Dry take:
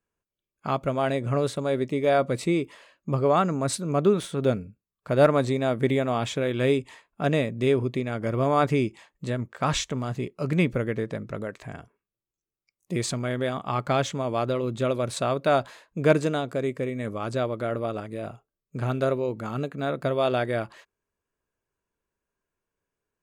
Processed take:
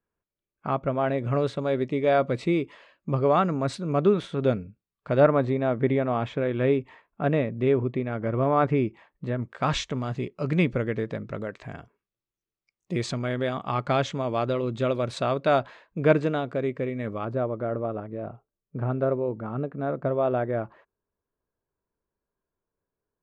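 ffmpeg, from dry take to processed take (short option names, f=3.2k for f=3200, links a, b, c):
-af "asetnsamples=n=441:p=0,asendcmd='1.18 lowpass f 3800;5.2 lowpass f 2000;9.43 lowpass f 4800;15.59 lowpass f 3000;17.25 lowpass f 1200',lowpass=2.1k"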